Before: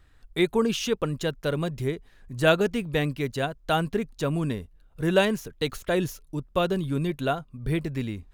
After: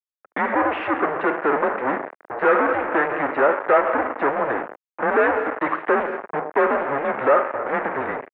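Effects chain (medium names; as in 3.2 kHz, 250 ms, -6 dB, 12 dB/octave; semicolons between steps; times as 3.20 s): spring tank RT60 1.1 s, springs 40/50 ms, chirp 50 ms, DRR 13.5 dB; fuzz box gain 40 dB, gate -41 dBFS; mistuned SSB -140 Hz 600–2000 Hz; trim +3 dB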